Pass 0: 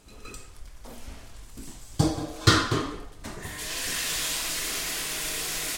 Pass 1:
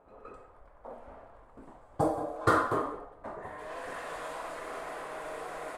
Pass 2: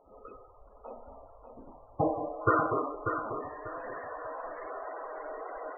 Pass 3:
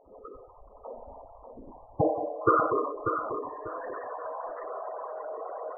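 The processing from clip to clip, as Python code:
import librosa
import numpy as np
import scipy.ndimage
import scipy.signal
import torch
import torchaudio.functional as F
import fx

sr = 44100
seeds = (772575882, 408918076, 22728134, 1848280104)

y1 = fx.curve_eq(x, sr, hz=(170.0, 370.0, 540.0, 820.0, 1200.0, 2900.0, 5700.0, 9500.0), db=(0, 5, 15, 13, 10, -11, -16, 0))
y1 = fx.env_lowpass(y1, sr, base_hz=2800.0, full_db=-16.0)
y1 = fx.low_shelf(y1, sr, hz=140.0, db=-6.5)
y1 = y1 * librosa.db_to_amplitude(-9.0)
y2 = fx.lowpass_res(y1, sr, hz=6600.0, q=2.0)
y2 = fx.spec_topn(y2, sr, count=32)
y2 = fx.echo_feedback(y2, sr, ms=591, feedback_pct=26, wet_db=-7.0)
y3 = fx.envelope_sharpen(y2, sr, power=2.0)
y3 = y3 * librosa.db_to_amplitude(3.0)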